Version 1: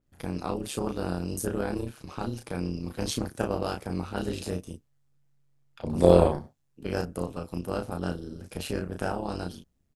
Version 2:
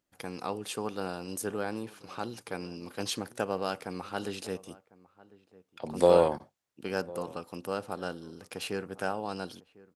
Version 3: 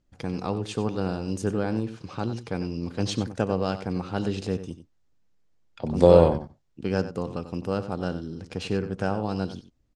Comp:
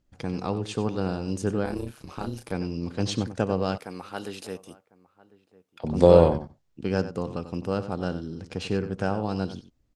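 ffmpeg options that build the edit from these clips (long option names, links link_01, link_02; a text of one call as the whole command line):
ffmpeg -i take0.wav -i take1.wav -i take2.wav -filter_complex "[2:a]asplit=3[link_01][link_02][link_03];[link_01]atrim=end=1.652[link_04];[0:a]atrim=start=1.648:end=2.522[link_05];[link_02]atrim=start=2.518:end=3.782[link_06];[1:a]atrim=start=3.778:end=5.842[link_07];[link_03]atrim=start=5.838[link_08];[link_04][link_05]acrossfade=duration=0.004:curve1=hsin:curve2=hsin[link_09];[link_09][link_06]acrossfade=duration=0.004:curve1=hsin:curve2=hsin[link_10];[link_10][link_07]acrossfade=duration=0.004:curve1=hsin:curve2=hsin[link_11];[link_11][link_08]acrossfade=duration=0.004:curve1=hsin:curve2=hsin" out.wav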